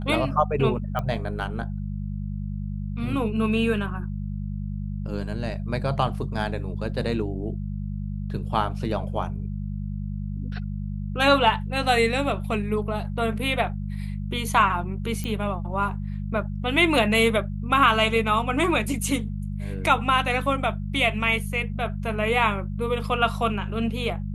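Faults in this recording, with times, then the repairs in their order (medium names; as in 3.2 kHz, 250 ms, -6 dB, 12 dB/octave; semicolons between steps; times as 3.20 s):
hum 50 Hz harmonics 4 -30 dBFS
0.99 s: pop -16 dBFS
15.24 s: pop -17 dBFS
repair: de-click; de-hum 50 Hz, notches 4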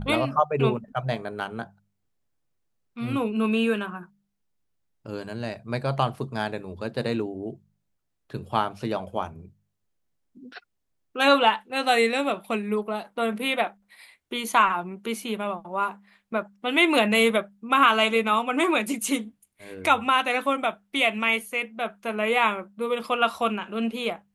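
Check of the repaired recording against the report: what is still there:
nothing left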